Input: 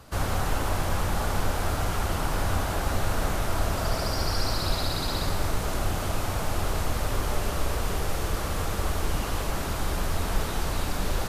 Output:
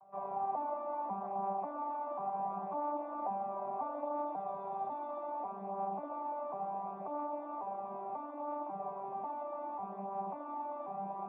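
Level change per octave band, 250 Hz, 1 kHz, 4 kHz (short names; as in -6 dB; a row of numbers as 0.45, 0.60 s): -12.5 dB, -3.5 dB, under -40 dB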